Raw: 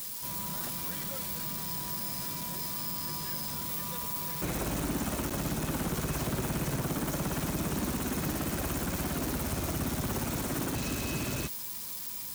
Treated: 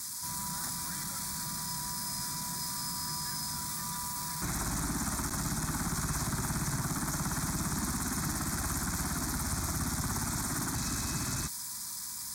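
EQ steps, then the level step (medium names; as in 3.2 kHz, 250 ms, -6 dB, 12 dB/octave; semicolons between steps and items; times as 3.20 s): low-pass 8.7 kHz 12 dB/octave; treble shelf 2.1 kHz +9.5 dB; static phaser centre 1.2 kHz, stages 4; 0.0 dB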